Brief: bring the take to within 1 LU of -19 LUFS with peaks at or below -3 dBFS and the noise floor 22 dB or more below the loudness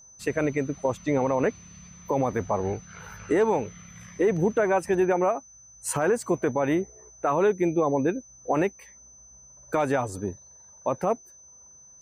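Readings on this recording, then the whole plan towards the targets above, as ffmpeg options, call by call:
steady tone 6100 Hz; tone level -49 dBFS; loudness -26.5 LUFS; peak -13.5 dBFS; loudness target -19.0 LUFS
-> -af "bandreject=f=6.1k:w=30"
-af "volume=7.5dB"

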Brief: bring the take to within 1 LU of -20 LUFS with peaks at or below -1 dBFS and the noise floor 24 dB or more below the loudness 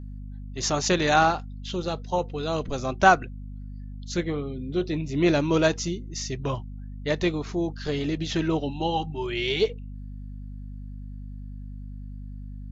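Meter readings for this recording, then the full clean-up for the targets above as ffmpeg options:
hum 50 Hz; harmonics up to 250 Hz; hum level -35 dBFS; loudness -26.0 LUFS; peak -3.5 dBFS; loudness target -20.0 LUFS
-> -af "bandreject=f=50:t=h:w=6,bandreject=f=100:t=h:w=6,bandreject=f=150:t=h:w=6,bandreject=f=200:t=h:w=6,bandreject=f=250:t=h:w=6"
-af "volume=6dB,alimiter=limit=-1dB:level=0:latency=1"

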